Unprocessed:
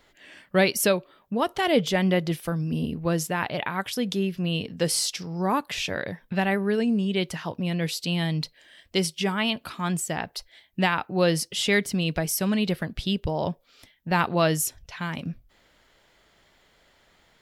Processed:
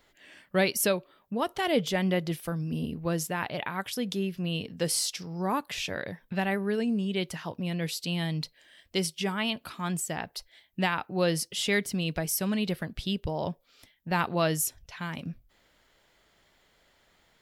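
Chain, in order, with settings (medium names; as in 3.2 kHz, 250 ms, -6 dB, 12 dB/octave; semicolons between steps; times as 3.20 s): treble shelf 9.8 kHz +5 dB; trim -4.5 dB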